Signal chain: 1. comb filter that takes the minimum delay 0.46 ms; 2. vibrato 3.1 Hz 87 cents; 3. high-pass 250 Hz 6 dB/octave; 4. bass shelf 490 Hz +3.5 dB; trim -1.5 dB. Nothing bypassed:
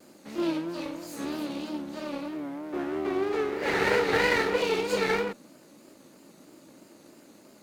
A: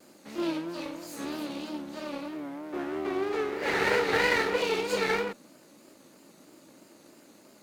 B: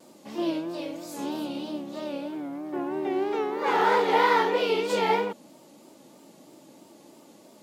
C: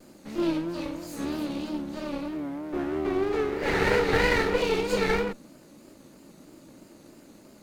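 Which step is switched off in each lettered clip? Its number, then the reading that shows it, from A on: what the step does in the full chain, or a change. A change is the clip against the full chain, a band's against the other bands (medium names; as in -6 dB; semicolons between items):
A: 4, 125 Hz band -2.5 dB; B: 1, 1 kHz band +7.5 dB; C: 3, momentary loudness spread change -1 LU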